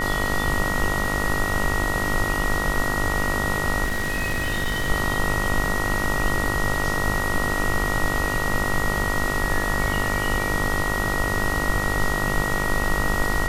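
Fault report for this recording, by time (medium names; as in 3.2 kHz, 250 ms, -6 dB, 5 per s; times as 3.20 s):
buzz 50 Hz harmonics 29 -28 dBFS
whine 1.9 kHz -26 dBFS
3.84–4.90 s: clipped -20 dBFS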